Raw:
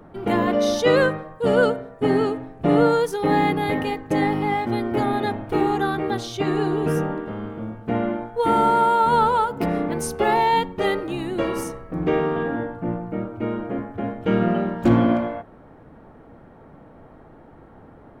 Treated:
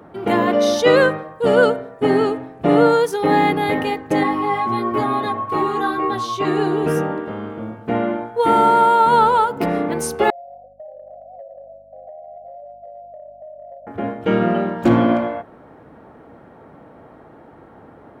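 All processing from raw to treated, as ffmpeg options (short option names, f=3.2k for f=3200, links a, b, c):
-filter_complex "[0:a]asettb=1/sr,asplit=3[a][b][c];[a]atrim=end=4.234[d];[b]atrim=start=4.23:end=6.45,asetpts=PTS-STARTPTS,afade=t=in:d=0.004:c=qsin,afade=t=out:st=2.216:d=0.004:c=qsin,aeval=exprs='val(0)+0.0631*sin(2*PI*1100*n/s)':c=same,flanger=delay=15.5:depth=2.7:speed=1.1[e];[c]atrim=start=6.446[f];[d][e]acrossfade=d=0.004:c1=hsin:c2=qsin[g];[g][f]acrossfade=d=0.004:c1=qsin:c2=hsin,asettb=1/sr,asplit=3[h][i][j];[h]atrim=end=10.304[k];[i]atrim=start=10.3:end=13.87,asetpts=PTS-STARTPTS,afade=t=in:d=0.004:c=qsin,afade=t=out:st=3.566:d=0.004:c=qsin,asuperpass=centerf=630:order=20:qfactor=2.7,aeval=exprs='val(0)+0.00141*(sin(2*PI*50*n/s)+sin(2*PI*2*50*n/s)/2+sin(2*PI*3*50*n/s)/3+sin(2*PI*4*50*n/s)/4+sin(2*PI*5*50*n/s)/5)':c=same,acompressor=threshold=-38dB:ratio=10:attack=3.2:release=140:knee=1:detection=peak[l];[j]atrim=start=13.866[m];[k][l]acrossfade=d=0.004:c1=hsin:c2=qsin[n];[n][m]acrossfade=d=0.004:c1=qsin:c2=hsin,highpass=64,bass=f=250:g=-5,treble=f=4k:g=-1,volume=4.5dB"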